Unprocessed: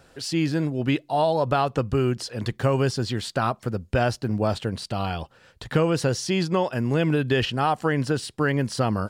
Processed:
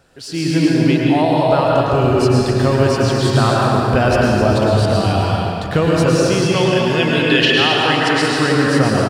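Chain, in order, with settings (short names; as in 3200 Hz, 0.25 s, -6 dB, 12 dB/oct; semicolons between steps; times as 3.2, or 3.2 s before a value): 6.5–8.22 weighting filter D; echo 0.264 s -9 dB; reverb RT60 2.8 s, pre-delay 0.101 s, DRR -4 dB; AGC; gain -1 dB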